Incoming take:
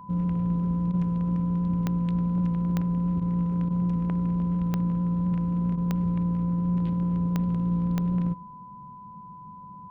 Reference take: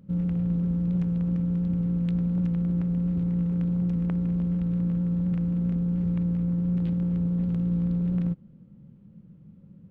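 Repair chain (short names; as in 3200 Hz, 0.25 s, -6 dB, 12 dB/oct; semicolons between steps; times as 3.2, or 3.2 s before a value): de-click; notch 1000 Hz, Q 30; interpolate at 0.92/3.2/3.69/5.76, 13 ms; inverse comb 96 ms -23 dB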